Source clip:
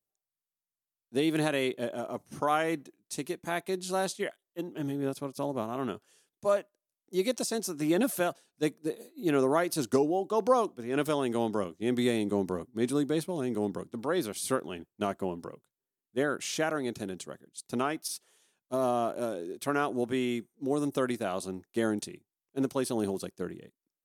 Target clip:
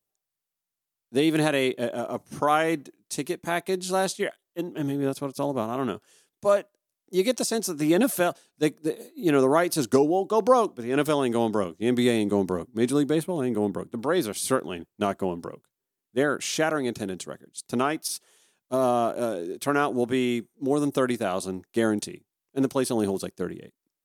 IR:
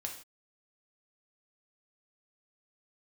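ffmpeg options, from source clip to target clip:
-filter_complex "[0:a]asettb=1/sr,asplit=3[s0][s1][s2];[s0]atrim=end=13.154[s3];[s1]atrim=start=13.15:end=13.99,asetpts=PTS-STARTPTS,afade=t=in:d=0.004:c=qsin,afade=t=out:st=0.836:d=0.004:c=qsin,equalizer=f=5100:t=o:w=0.85:g=-9.5[s4];[s2]atrim=start=13.986[s5];[s3][s4]acrossfade=d=0.004:c1=hsin:c2=qsin[s6];[s6][s5]acrossfade=d=0.004:c1=qsin:c2=hsin,volume=1.88"

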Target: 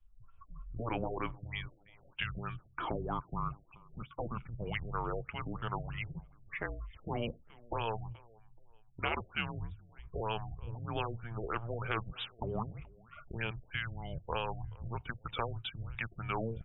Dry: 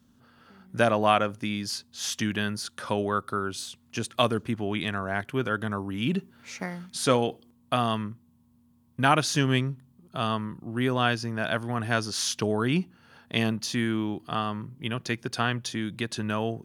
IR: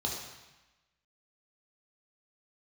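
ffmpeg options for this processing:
-filter_complex "[0:a]afreqshift=-230,afftdn=nr=30:nf=-45,equalizer=f=100:t=o:w=0.67:g=-4,equalizer=f=250:t=o:w=0.67:g=-7,equalizer=f=2500:t=o:w=0.67:g=5,acompressor=threshold=0.00251:ratio=2,afftfilt=real='re*lt(hypot(re,im),0.0501)':imag='im*lt(hypot(re,im),0.0501)':win_size=1024:overlap=0.75,aeval=exprs='0.0531*(cos(1*acos(clip(val(0)/0.0531,-1,1)))-cos(1*PI/2))+0.0015*(cos(4*acos(clip(val(0)/0.0531,-1,1)))-cos(4*PI/2))+0.00106*(cos(5*acos(clip(val(0)/0.0531,-1,1)))-cos(5*PI/2))':c=same,asplit=2[s0][s1];[s1]adelay=428,lowpass=f=3000:p=1,volume=0.0631,asplit=2[s2][s3];[s3]adelay=428,lowpass=f=3000:p=1,volume=0.34[s4];[s2][s4]amix=inputs=2:normalize=0[s5];[s0][s5]amix=inputs=2:normalize=0,afftfilt=real='re*lt(b*sr/1024,700*pow(3900/700,0.5+0.5*sin(2*PI*3.2*pts/sr)))':imag='im*lt(b*sr/1024,700*pow(3900/700,0.5+0.5*sin(2*PI*3.2*pts/sr)))':win_size=1024:overlap=0.75,volume=2.99"

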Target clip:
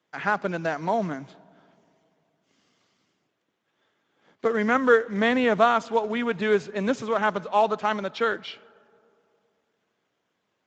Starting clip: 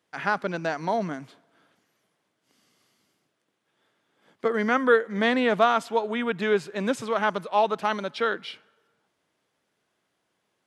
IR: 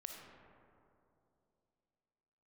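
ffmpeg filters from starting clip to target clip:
-filter_complex "[0:a]acrusher=bits=7:mode=log:mix=0:aa=0.000001,asplit=2[s0][s1];[1:a]atrim=start_sample=2205,lowpass=5000[s2];[s1][s2]afir=irnorm=-1:irlink=0,volume=0.168[s3];[s0][s3]amix=inputs=2:normalize=0" -ar 16000 -c:a libspeex -b:a 17k

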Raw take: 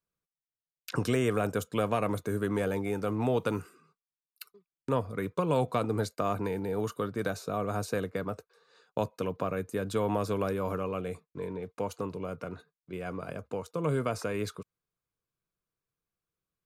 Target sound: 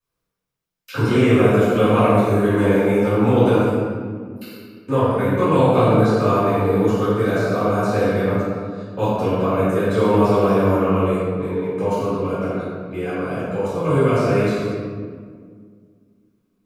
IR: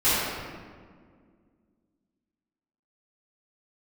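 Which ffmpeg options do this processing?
-filter_complex "[1:a]atrim=start_sample=2205[s0];[0:a][s0]afir=irnorm=-1:irlink=0,acrossover=split=4000[s1][s2];[s2]acompressor=threshold=0.0126:ratio=4:attack=1:release=60[s3];[s1][s3]amix=inputs=2:normalize=0,volume=0.596"

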